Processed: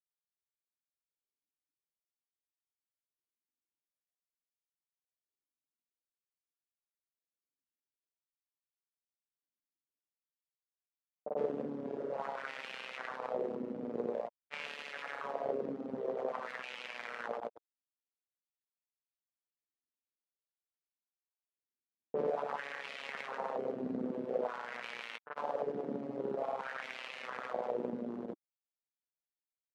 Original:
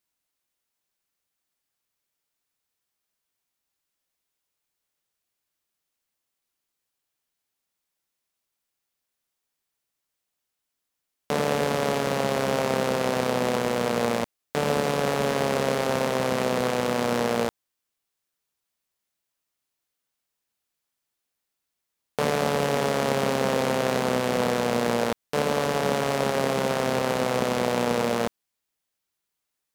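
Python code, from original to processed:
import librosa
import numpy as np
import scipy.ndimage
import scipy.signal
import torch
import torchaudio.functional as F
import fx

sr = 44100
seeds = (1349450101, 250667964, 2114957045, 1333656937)

y = fx.env_lowpass(x, sr, base_hz=360.0, full_db=-20.0)
y = fx.dereverb_blind(y, sr, rt60_s=1.1)
y = fx.wah_lfo(y, sr, hz=0.49, low_hz=260.0, high_hz=2600.0, q=2.9)
y = fx.granulator(y, sr, seeds[0], grain_ms=100.0, per_s=20.0, spray_ms=100.0, spread_st=0)
y = y * 10.0 ** (-1.5 / 20.0)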